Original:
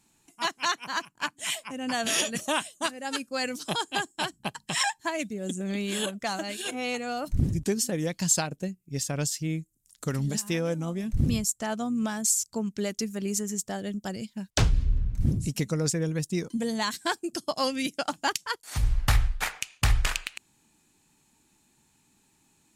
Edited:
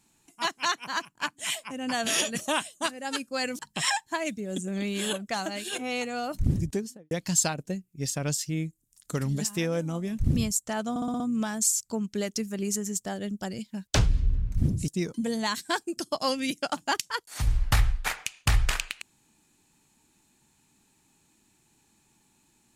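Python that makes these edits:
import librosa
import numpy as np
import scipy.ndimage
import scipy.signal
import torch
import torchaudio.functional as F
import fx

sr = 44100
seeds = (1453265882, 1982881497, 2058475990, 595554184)

y = fx.studio_fade_out(x, sr, start_s=7.51, length_s=0.53)
y = fx.edit(y, sr, fx.cut(start_s=3.59, length_s=0.93),
    fx.stutter(start_s=11.83, slice_s=0.06, count=6),
    fx.cut(start_s=15.51, length_s=0.73), tone=tone)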